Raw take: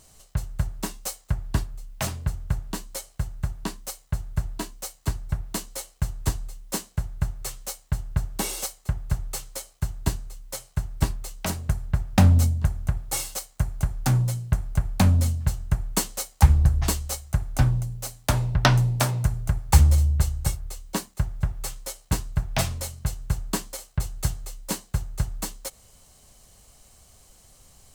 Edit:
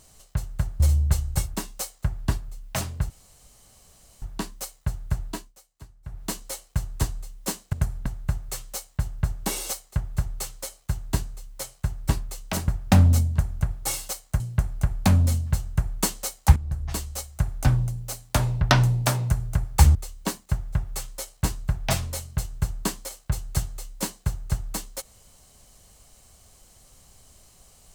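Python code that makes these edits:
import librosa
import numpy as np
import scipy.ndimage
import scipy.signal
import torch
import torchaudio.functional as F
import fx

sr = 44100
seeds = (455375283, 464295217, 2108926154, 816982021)

y = fx.edit(x, sr, fx.room_tone_fill(start_s=2.36, length_s=1.12),
    fx.fade_down_up(start_s=4.47, length_s=1.15, db=-19.0, fade_s=0.32, curve='qsin'),
    fx.move(start_s=11.61, length_s=0.33, to_s=6.99),
    fx.cut(start_s=13.66, length_s=0.68),
    fx.fade_in_from(start_s=16.5, length_s=0.91, floor_db=-16.5),
    fx.move(start_s=19.89, length_s=0.74, to_s=0.8), tone=tone)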